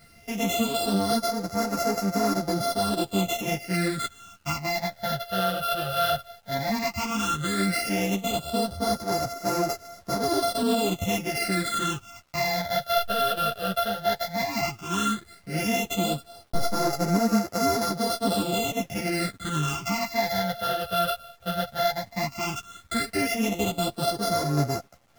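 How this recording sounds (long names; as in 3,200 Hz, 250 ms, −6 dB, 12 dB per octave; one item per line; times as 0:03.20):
a buzz of ramps at a fixed pitch in blocks of 64 samples
phaser sweep stages 8, 0.13 Hz, lowest notch 280–3,100 Hz
a quantiser's noise floor 10 bits, dither none
a shimmering, thickened sound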